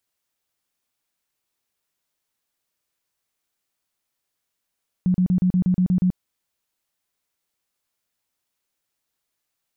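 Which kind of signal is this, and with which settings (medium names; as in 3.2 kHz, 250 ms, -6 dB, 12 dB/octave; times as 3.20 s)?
tone bursts 182 Hz, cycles 15, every 0.12 s, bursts 9, -15 dBFS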